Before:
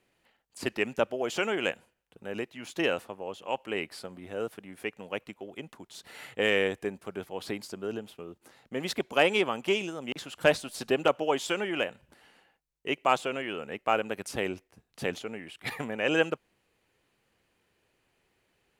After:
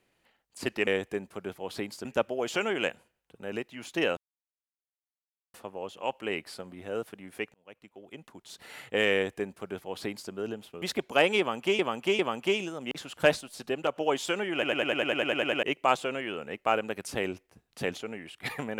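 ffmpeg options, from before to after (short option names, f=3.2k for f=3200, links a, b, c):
-filter_complex "[0:a]asplit=21[a][b][c][d][e][f][g][h][i][j][k][l][m][n][o][p][q][r][s][t][u];[a]atrim=end=0.872[v];[b]atrim=start=6.578:end=7.762[w];[c]atrim=start=0.868:end=2.99,asetpts=PTS-STARTPTS,afade=t=out:st=2.118:d=0.004:c=hsin,apad=pad_dur=1.37[x];[d]atrim=start=2.99:end=4.99,asetpts=PTS-STARTPTS,afade=t=in:d=0.004:c=hsin,afade=t=out:st=1.996:d=0.004:c=hsin[y];[e]atrim=start=4.99:end=8.272,asetpts=PTS-STARTPTS,afade=t=in:d=1.02[z];[f]atrim=start=8.828:end=9.802[aa];[g]atrim=start=9.398:end=9.802[ab];[h]atrim=start=9.398:end=10.622[ac];[i]atrim=start=10.618:end=11.172,asetpts=PTS-STARTPTS,volume=-5dB[ad];[j]atrim=start=11.168:end=11.842[ae];[k]atrim=start=11.738:end=11.842[af];[l]atrim=start=11.738:end=11.842[ag];[m]atrim=start=11.738:end=11.842[ah];[n]atrim=start=11.738:end=11.842[ai];[o]atrim=start=11.738:end=11.842[aj];[p]atrim=start=11.738:end=11.842[ak];[q]atrim=start=11.738:end=11.842[al];[r]atrim=start=11.738:end=11.842[am];[s]atrim=start=11.738:end=11.842[an];[t]atrim=start=11.738:end=11.842[ao];[u]atrim=start=12.838[ap];[v][w]acrossfade=d=0.004:c1=hsin:c2=hsin[aq];[x][y][z]concat=n=3:v=0:a=1[ar];[aq][ar]acrossfade=d=0.004:c1=hsin:c2=hsin[as];[as][aa]acrossfade=d=0.004:c1=hsin:c2=hsin[at];[at][ab]acrossfade=d=0.004:c1=hsin:c2=hsin[au];[au][ac]acrossfade=d=0.004:c1=hsin:c2=hsin[av];[av][ad]acrossfade=d=0.004:c1=hsin:c2=hsin[aw];[aw][ae]acrossfade=d=0.004:c1=hsin:c2=hsin[ax];[ax][af]acrossfade=d=0.004:c1=hsin:c2=hsin[ay];[ay][ag]acrossfade=d=0.004:c1=hsin:c2=hsin[az];[az][ah]acrossfade=d=0.004:c1=hsin:c2=hsin[ba];[ba][ai]acrossfade=d=0.004:c1=hsin:c2=hsin[bb];[bb][aj]acrossfade=d=0.004:c1=hsin:c2=hsin[bc];[bc][ak]acrossfade=d=0.004:c1=hsin:c2=hsin[bd];[bd][al]acrossfade=d=0.004:c1=hsin:c2=hsin[be];[be][am]acrossfade=d=0.004:c1=hsin:c2=hsin[bf];[bf][an]acrossfade=d=0.004:c1=hsin:c2=hsin[bg];[bg][ao]acrossfade=d=0.004:c1=hsin:c2=hsin[bh];[bh][ap]acrossfade=d=0.004:c1=hsin:c2=hsin"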